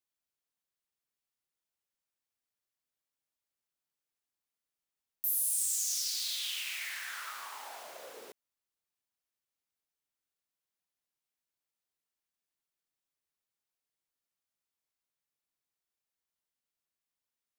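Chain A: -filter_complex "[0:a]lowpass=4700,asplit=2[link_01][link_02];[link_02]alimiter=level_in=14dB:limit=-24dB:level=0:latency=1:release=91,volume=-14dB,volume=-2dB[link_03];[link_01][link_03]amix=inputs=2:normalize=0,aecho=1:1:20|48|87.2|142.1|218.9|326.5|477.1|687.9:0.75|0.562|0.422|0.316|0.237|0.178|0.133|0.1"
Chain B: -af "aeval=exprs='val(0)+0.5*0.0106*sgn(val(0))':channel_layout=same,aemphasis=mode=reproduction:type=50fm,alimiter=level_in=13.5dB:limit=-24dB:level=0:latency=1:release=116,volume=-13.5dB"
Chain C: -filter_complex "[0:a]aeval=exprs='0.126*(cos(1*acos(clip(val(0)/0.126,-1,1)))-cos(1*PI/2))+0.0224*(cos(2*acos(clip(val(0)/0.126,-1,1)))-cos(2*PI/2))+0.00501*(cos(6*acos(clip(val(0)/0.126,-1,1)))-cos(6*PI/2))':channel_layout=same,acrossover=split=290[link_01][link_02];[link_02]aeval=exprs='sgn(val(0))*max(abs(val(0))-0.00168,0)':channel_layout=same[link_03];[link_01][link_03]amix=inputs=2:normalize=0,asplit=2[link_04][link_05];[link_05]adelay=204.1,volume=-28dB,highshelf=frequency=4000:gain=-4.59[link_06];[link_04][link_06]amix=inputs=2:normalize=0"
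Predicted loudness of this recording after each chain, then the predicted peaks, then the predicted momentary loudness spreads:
−33.0, −49.0, −32.0 LKFS; −20.5, −37.5, −16.5 dBFS; 14, 10, 20 LU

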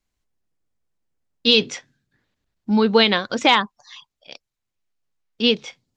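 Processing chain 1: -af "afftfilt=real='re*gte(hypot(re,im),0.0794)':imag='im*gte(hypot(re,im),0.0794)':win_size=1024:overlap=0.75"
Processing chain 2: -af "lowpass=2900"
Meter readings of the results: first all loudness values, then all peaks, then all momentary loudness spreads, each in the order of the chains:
−18.5, −20.0 LKFS; −2.0, −3.5 dBFS; 15, 14 LU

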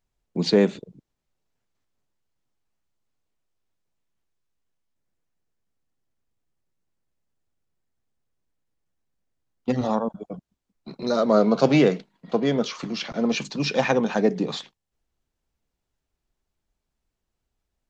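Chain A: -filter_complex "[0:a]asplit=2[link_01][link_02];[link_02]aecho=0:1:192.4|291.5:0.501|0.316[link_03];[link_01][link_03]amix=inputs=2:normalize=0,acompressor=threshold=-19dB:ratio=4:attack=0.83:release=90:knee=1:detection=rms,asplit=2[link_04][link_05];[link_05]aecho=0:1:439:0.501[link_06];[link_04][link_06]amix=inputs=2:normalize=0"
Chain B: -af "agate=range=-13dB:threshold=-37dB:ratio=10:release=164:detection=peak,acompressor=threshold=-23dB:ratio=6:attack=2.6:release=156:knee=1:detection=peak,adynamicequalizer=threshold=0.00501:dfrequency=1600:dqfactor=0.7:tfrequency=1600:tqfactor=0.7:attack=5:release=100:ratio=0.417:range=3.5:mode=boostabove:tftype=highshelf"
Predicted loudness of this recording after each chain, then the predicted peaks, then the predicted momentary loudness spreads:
−26.5, −28.0 LKFS; −12.0, −10.0 dBFS; 12, 13 LU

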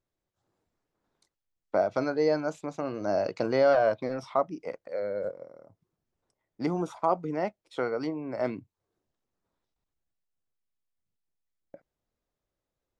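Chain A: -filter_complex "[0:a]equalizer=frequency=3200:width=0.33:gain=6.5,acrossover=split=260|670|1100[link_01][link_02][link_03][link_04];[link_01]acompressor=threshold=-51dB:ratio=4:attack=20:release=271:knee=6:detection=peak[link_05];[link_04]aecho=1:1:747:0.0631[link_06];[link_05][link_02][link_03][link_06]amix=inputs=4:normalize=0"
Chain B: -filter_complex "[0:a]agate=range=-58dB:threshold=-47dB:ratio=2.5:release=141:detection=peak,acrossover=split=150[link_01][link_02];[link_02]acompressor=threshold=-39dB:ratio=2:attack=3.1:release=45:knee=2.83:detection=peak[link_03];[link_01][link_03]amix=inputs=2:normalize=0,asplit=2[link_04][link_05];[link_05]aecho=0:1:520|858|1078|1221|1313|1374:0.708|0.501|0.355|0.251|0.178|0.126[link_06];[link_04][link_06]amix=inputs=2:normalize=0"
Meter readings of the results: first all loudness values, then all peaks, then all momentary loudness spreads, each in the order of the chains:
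−28.0, −35.5 LKFS; −11.0, −19.0 dBFS; 12, 9 LU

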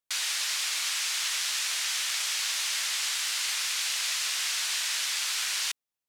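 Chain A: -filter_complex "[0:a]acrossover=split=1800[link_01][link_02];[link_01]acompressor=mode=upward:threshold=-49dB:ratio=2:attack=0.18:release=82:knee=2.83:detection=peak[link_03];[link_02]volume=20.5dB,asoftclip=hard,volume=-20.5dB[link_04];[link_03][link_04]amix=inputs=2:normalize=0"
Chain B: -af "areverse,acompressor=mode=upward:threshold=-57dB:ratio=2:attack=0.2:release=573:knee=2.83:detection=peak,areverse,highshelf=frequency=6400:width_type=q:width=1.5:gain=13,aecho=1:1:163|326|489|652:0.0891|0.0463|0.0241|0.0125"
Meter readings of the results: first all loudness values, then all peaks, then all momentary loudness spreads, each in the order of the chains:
−27.0, −19.5 LKFS; −18.5, −9.0 dBFS; 0, 0 LU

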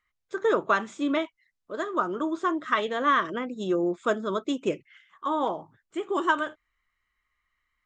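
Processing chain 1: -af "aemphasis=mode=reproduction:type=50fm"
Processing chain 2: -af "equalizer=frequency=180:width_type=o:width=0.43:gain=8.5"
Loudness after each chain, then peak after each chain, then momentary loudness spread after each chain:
−27.5, −27.5 LKFS; −10.5, −10.0 dBFS; 12, 12 LU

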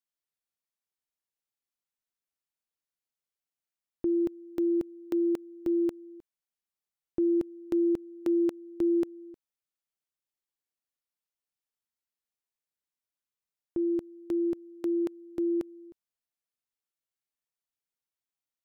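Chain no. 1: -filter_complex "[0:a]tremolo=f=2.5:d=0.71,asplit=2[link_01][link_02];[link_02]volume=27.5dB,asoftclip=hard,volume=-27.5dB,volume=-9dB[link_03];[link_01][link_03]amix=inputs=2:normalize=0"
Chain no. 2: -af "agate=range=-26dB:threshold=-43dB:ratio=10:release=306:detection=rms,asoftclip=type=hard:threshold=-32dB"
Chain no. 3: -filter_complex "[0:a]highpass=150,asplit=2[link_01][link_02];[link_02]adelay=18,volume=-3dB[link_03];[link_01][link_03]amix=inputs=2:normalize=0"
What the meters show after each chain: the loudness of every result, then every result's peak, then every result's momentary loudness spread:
−31.5, −37.0, −26.5 LKFS; −20.0, −32.0, −17.5 dBFS; 12, 12, 7 LU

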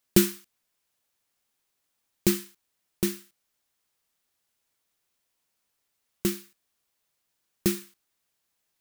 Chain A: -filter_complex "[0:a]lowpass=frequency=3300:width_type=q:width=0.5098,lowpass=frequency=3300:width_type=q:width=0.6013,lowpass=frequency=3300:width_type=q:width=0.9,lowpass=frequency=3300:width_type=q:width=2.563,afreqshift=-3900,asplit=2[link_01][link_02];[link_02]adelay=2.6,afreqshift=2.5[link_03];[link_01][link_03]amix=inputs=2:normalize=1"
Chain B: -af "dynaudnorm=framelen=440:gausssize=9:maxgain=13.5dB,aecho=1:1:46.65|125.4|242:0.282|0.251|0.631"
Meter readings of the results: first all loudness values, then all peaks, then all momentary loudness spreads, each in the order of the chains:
−29.5, −24.0 LKFS; −9.0, −2.0 dBFS; 14, 7 LU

